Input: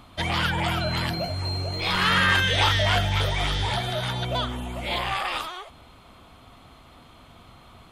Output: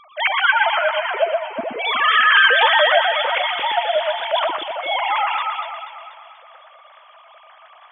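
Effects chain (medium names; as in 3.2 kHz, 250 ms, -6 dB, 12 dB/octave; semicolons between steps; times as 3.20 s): formants replaced by sine waves; on a send: echo whose repeats swap between lows and highs 121 ms, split 2.2 kHz, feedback 69%, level -3 dB; on the sum: trim +4.5 dB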